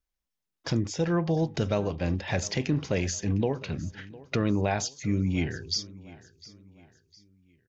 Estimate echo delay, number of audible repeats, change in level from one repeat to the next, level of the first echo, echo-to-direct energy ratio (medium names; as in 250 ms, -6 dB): 706 ms, 2, -8.0 dB, -20.0 dB, -19.5 dB